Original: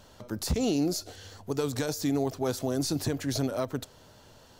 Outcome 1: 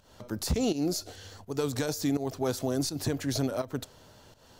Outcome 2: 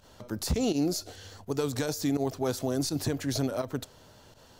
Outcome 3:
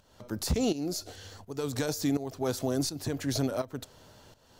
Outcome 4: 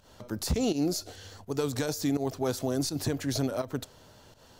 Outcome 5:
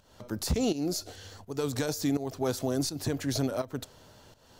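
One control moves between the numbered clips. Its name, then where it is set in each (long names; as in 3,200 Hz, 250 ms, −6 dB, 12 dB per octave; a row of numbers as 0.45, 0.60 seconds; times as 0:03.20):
fake sidechain pumping, release: 211, 74, 502, 134, 322 milliseconds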